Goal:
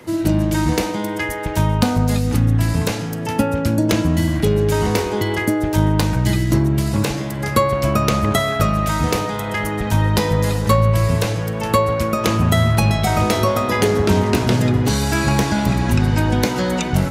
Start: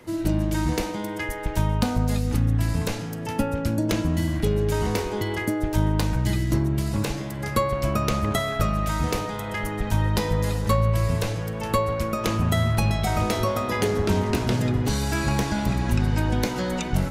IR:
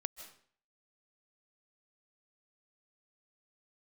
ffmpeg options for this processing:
-af "highpass=67,volume=7dB"

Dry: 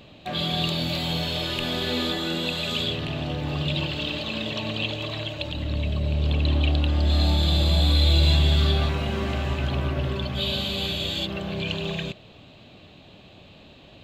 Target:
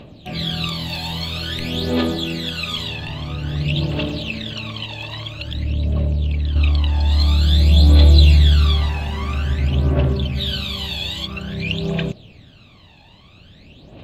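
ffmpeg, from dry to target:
-filter_complex "[0:a]asettb=1/sr,asplit=3[a][b][c];[a]atrim=end=4.244[d];[b]atrim=start=4.24:end=6.56,asetpts=PTS-STARTPTS,afade=t=in:d=0.004:c=qsin,afade=t=out:st=2.316:d=0.004:c=qsin,acompressor=threshold=-25dB:ratio=6[e];[c]atrim=start=6.556[f];[d][e]acrossfade=d=0.004:c1=hsin:c2=qsin[g];[g][f]acrossfade=d=0.004:c1=qsin:c2=hsin,aphaser=in_gain=1:out_gain=1:delay=1.2:decay=0.72:speed=0.5:type=triangular,volume=-1dB"

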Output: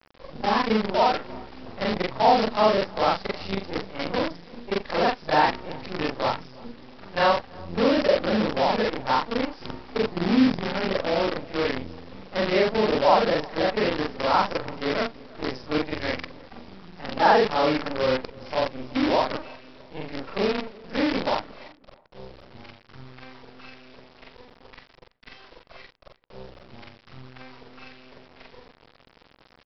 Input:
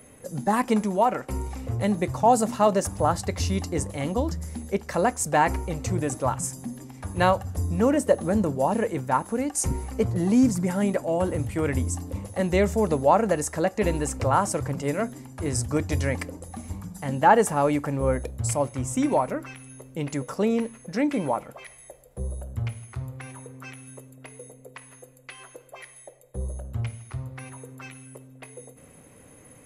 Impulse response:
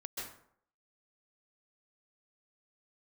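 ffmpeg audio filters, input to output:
-filter_complex "[0:a]afftfilt=real='re':imag='-im':win_size=4096:overlap=0.75,highpass=230,acontrast=38,aresample=11025,acrusher=bits=5:dc=4:mix=0:aa=0.000001,aresample=44100,asplit=2[a][b];[b]adelay=331,lowpass=f=1.2k:p=1,volume=-22dB,asplit=2[c][d];[d]adelay=331,lowpass=f=1.2k:p=1,volume=0.32[e];[a][c][e]amix=inputs=3:normalize=0"

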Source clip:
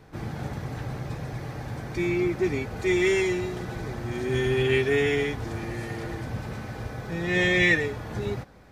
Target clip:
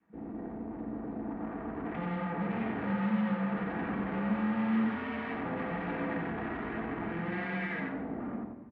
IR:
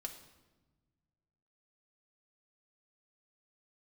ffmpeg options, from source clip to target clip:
-filter_complex "[0:a]aeval=exprs='0.335*(cos(1*acos(clip(val(0)/0.335,-1,1)))-cos(1*PI/2))+0.168*(cos(5*acos(clip(val(0)/0.335,-1,1)))-cos(5*PI/2))+0.0668*(cos(6*acos(clip(val(0)/0.335,-1,1)))-cos(6*PI/2))':c=same,adynamicequalizer=threshold=0.0447:dfrequency=380:dqfactor=1.2:tfrequency=380:tqfactor=1.2:attack=5:release=100:ratio=0.375:range=2.5:mode=boostabove:tftype=bell,alimiter=limit=-14dB:level=0:latency=1:release=60,dynaudnorm=f=290:g=13:m=15dB,afwtdn=0.0794,aeval=exprs='val(0)*sin(2*PI*170*n/s)':c=same,aeval=exprs='(tanh(17.8*val(0)+0.35)-tanh(0.35))/17.8':c=same,highpass=120,equalizer=f=210:t=q:w=4:g=9,equalizer=f=560:t=q:w=4:g=-7,equalizer=f=840:t=q:w=4:g=3,equalizer=f=1.8k:t=q:w=4:g=4,lowpass=f=2.5k:w=0.5412,lowpass=f=2.5k:w=1.3066,aecho=1:1:90:0.596[a];[1:a]atrim=start_sample=2205[b];[a][b]afir=irnorm=-1:irlink=0,volume=-7dB"

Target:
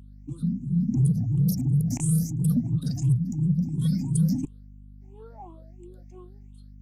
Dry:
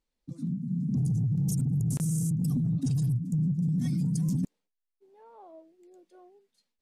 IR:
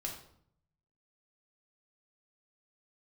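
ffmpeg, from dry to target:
-af "afftfilt=real='re*pow(10,23/40*sin(2*PI*(0.66*log(max(b,1)*sr/1024/100)/log(2)-(2.9)*(pts-256)/sr)))':imag='im*pow(10,23/40*sin(2*PI*(0.66*log(max(b,1)*sr/1024/100)/log(2)-(2.9)*(pts-256)/sr)))':win_size=1024:overlap=0.75,aeval=exprs='val(0)+0.00631*(sin(2*PI*50*n/s)+sin(2*PI*2*50*n/s)/2+sin(2*PI*3*50*n/s)/3+sin(2*PI*4*50*n/s)/4+sin(2*PI*5*50*n/s)/5)':c=same,volume=-1dB"

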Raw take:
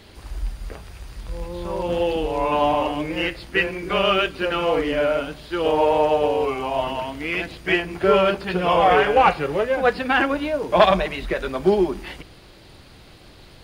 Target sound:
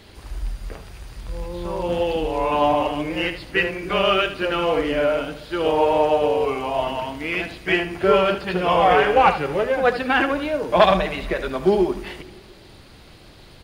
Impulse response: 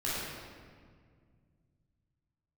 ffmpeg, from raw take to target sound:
-filter_complex "[0:a]aecho=1:1:75:0.266,asplit=2[a][b];[1:a]atrim=start_sample=2205,adelay=149[c];[b][c]afir=irnorm=-1:irlink=0,volume=-30dB[d];[a][d]amix=inputs=2:normalize=0"

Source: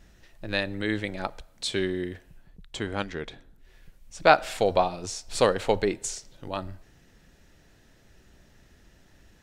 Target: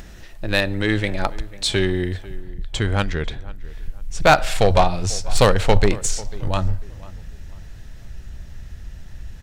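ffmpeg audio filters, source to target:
-filter_complex "[0:a]asubboost=boost=6:cutoff=120,apsyclip=13dB,acompressor=mode=upward:threshold=-29dB:ratio=2.5,aeval=exprs='1.06*(cos(1*acos(clip(val(0)/1.06,-1,1)))-cos(1*PI/2))+0.168*(cos(3*acos(clip(val(0)/1.06,-1,1)))-cos(3*PI/2))+0.0944*(cos(5*acos(clip(val(0)/1.06,-1,1)))-cos(5*PI/2))':c=same,asplit=2[a][b];[b]adelay=495,lowpass=f=2.1k:p=1,volume=-19dB,asplit=2[c][d];[d]adelay=495,lowpass=f=2.1k:p=1,volume=0.33,asplit=2[e][f];[f]adelay=495,lowpass=f=2.1k:p=1,volume=0.33[g];[c][e][g]amix=inputs=3:normalize=0[h];[a][h]amix=inputs=2:normalize=0,volume=-3.5dB"

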